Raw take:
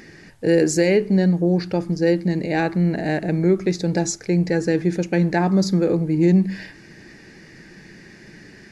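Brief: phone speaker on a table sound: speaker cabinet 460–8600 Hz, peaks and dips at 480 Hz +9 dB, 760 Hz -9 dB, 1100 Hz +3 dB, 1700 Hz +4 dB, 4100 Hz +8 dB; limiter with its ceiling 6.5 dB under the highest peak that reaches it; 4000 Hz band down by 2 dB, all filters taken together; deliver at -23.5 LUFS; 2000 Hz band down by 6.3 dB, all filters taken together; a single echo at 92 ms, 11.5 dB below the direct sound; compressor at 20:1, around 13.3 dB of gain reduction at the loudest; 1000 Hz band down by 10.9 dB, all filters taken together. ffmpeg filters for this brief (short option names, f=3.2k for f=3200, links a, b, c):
-af "equalizer=f=1k:t=o:g=-8,equalizer=f=2k:t=o:g=-7.5,equalizer=f=4k:t=o:g=-6,acompressor=threshold=-26dB:ratio=20,alimiter=limit=-23.5dB:level=0:latency=1,highpass=f=460:w=0.5412,highpass=f=460:w=1.3066,equalizer=f=480:t=q:w=4:g=9,equalizer=f=760:t=q:w=4:g=-9,equalizer=f=1.1k:t=q:w=4:g=3,equalizer=f=1.7k:t=q:w=4:g=4,equalizer=f=4.1k:t=q:w=4:g=8,lowpass=f=8.6k:w=0.5412,lowpass=f=8.6k:w=1.3066,aecho=1:1:92:0.266,volume=13.5dB"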